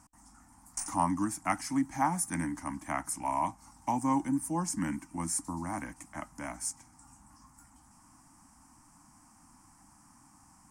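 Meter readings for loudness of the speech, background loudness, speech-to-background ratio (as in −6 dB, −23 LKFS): −33.5 LKFS, −40.0 LKFS, 6.5 dB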